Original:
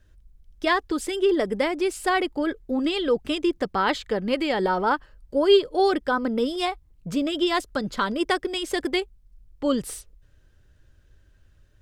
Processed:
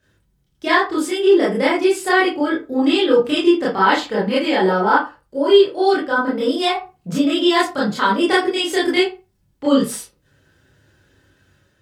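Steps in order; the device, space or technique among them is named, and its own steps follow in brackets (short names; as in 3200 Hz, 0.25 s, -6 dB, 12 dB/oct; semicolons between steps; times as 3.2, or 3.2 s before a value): far laptop microphone (reverb RT60 0.30 s, pre-delay 22 ms, DRR -8 dB; HPF 130 Hz 12 dB/oct; AGC gain up to 3.5 dB); gain -1 dB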